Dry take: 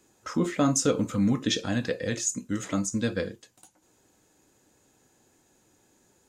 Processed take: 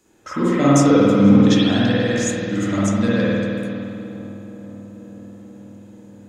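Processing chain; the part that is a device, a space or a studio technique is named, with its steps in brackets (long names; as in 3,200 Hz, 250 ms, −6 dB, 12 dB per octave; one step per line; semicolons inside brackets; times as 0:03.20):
dub delay into a spring reverb (feedback echo with a low-pass in the loop 484 ms, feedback 76%, low-pass 1,400 Hz, level −16 dB; spring reverb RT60 2.4 s, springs 50 ms, chirp 70 ms, DRR −9 dB)
level +1 dB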